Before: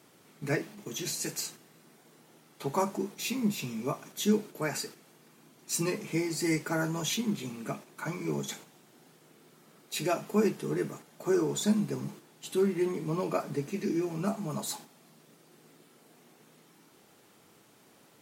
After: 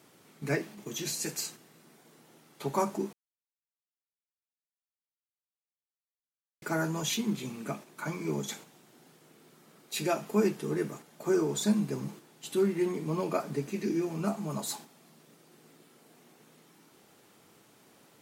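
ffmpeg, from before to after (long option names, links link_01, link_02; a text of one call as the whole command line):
ffmpeg -i in.wav -filter_complex "[0:a]asplit=3[link_01][link_02][link_03];[link_01]atrim=end=3.13,asetpts=PTS-STARTPTS,afade=type=out:start_time=3.126:duration=0.004:curve=hsin[link_04];[link_02]atrim=start=3.13:end=6.62,asetpts=PTS-STARTPTS,volume=0[link_05];[link_03]atrim=start=6.62,asetpts=PTS-STARTPTS,afade=type=in:duration=0.004:curve=hsin[link_06];[link_04][link_05][link_06]concat=n=3:v=0:a=1" out.wav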